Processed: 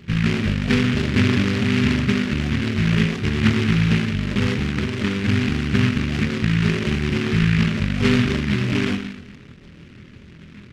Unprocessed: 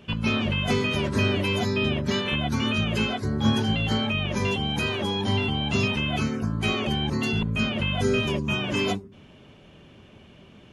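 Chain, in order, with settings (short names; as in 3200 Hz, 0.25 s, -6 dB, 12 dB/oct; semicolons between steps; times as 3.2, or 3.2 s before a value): Gaussian blur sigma 19 samples; flutter echo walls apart 4.2 m, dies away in 0.27 s; on a send at -14.5 dB: reverb RT60 0.80 s, pre-delay 0.118 s; on the sum: noise-modulated delay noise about 2000 Hz, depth 0.24 ms; gain +8 dB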